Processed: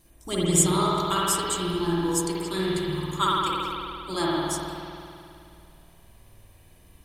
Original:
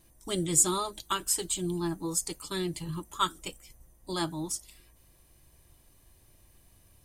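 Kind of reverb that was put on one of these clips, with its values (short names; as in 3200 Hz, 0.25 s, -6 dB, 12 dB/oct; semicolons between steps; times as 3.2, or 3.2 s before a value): spring tank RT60 2.6 s, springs 53 ms, chirp 30 ms, DRR -6 dB; gain +1.5 dB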